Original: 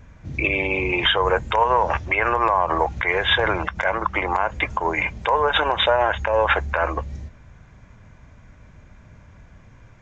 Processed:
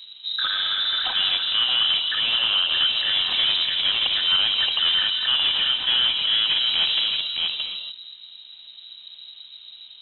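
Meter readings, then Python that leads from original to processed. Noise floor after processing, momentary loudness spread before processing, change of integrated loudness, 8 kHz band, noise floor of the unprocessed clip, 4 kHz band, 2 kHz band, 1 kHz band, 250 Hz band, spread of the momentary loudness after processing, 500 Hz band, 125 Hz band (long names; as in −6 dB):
−45 dBFS, 5 LU, +1.5 dB, can't be measured, −49 dBFS, +11.5 dB, −6.0 dB, −16.0 dB, below −15 dB, 11 LU, −24.0 dB, below −20 dB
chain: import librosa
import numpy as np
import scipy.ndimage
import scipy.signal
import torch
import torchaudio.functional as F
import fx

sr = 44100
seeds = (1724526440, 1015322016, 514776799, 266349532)

y = scipy.signal.medfilt(x, 25)
y = scipy.signal.sosfilt(scipy.signal.butter(2, 55.0, 'highpass', fs=sr, output='sos'), y)
y = fx.rider(y, sr, range_db=4, speed_s=0.5)
y = fx.peak_eq(y, sr, hz=810.0, db=13.0, octaves=0.32)
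y = y + 10.0 ** (-6.0 / 20.0) * np.pad(y, (int(623 * sr / 1000.0), 0))[:len(y)]
y = fx.rev_gated(y, sr, seeds[0], gate_ms=310, shape='rising', drr_db=7.5)
y = 10.0 ** (-16.0 / 20.0) * np.tanh(y / 10.0 ** (-16.0 / 20.0))
y = fx.freq_invert(y, sr, carrier_hz=3900)
y = fx.notch(y, sr, hz=440.0, q=12.0)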